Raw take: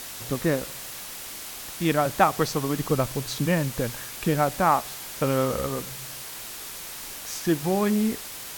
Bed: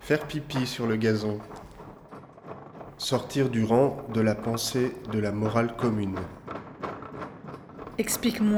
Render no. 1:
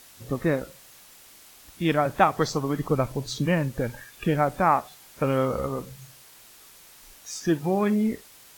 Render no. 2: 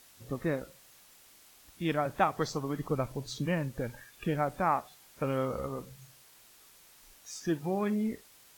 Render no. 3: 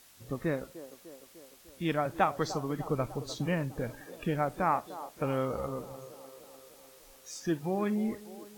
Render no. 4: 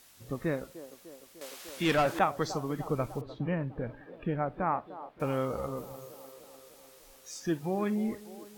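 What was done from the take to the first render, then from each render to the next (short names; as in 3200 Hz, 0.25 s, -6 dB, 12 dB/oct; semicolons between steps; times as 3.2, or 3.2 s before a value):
noise print and reduce 13 dB
gain -7.5 dB
band-limited delay 0.3 s, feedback 63%, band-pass 540 Hz, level -13 dB
1.41–2.19 overdrive pedal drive 20 dB, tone 6200 Hz, clips at -18 dBFS; 3.21–5.2 air absorption 470 m; 5.77–6.32 bell 15000 Hz +7.5 dB 0.4 oct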